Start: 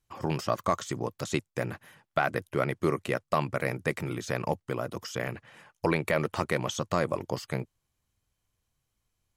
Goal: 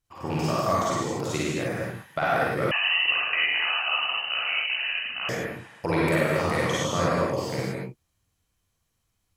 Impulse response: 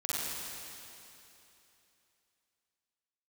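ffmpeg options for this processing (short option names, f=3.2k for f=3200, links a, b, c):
-filter_complex "[1:a]atrim=start_sample=2205,afade=t=out:st=0.35:d=0.01,atrim=end_sample=15876[a];[0:a][a]afir=irnorm=-1:irlink=0,asettb=1/sr,asplit=3[b][c][d];[b]atrim=end=2.714[e];[c]atrim=start=2.71:end=5.29,asetpts=PTS-STARTPTS,afade=t=in:d=0.004:c=qsin,afade=t=out:st=2.576:d=0.004:c=qsin,lowpass=f=2.6k:t=q:w=0.5098,lowpass=f=2.6k:t=q:w=0.6013,lowpass=f=2.6k:t=q:w=0.9,lowpass=f=2.6k:t=q:w=2.563,afreqshift=-3100[f];[d]atrim=start=5.286[g];[e][f]acrossfade=d=0.004:c1=hsin:c2=qsin[h];[h][g]acrossfade=d=0.004:c1=qsin:c2=hsin"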